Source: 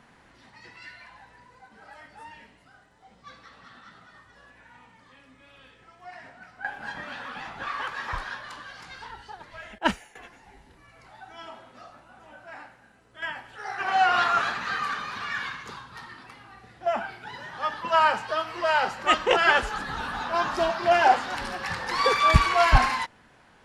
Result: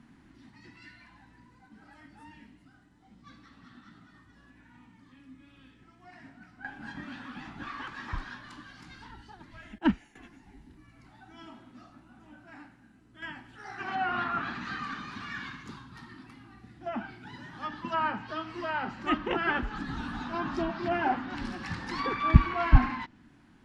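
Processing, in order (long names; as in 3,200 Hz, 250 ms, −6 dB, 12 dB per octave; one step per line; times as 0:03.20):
treble cut that deepens with the level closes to 2,400 Hz, closed at −19.5 dBFS
low shelf with overshoot 380 Hz +8.5 dB, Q 3
level −7.5 dB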